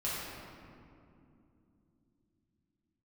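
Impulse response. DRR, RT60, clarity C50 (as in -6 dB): -9.0 dB, 2.8 s, -3.0 dB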